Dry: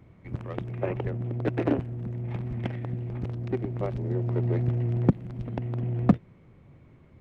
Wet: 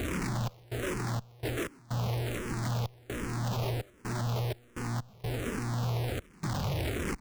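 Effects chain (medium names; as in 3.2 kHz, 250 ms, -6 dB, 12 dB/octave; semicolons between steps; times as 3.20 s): one-bit comparator; trance gate "xx.xx.x.xxxx.x" 63 bpm -24 dB; barber-pole phaser -1.3 Hz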